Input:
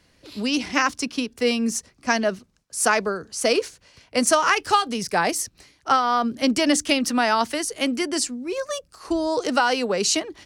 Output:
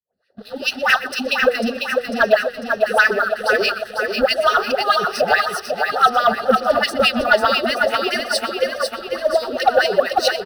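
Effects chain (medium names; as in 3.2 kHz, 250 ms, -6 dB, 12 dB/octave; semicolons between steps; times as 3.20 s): phase dispersion highs, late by 137 ms, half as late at 680 Hz; in parallel at -2 dB: compression, threshold -33 dBFS, peak gain reduction 18 dB; on the sum: wah-wah 4.7 Hz 220–2500 Hz, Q 4; tape echo 123 ms, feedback 44%, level -16 dB, low-pass 4.9 kHz; level rider gain up to 8 dB; tone controls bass -7 dB, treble +9 dB; band-stop 3.2 kHz, Q 5.6; on a send: feedback delay 497 ms, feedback 52%, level -6 dB; on the sum: waveshaping leveller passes 2; treble shelf 6 kHz +4 dB; static phaser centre 1.5 kHz, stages 8; trim +2 dB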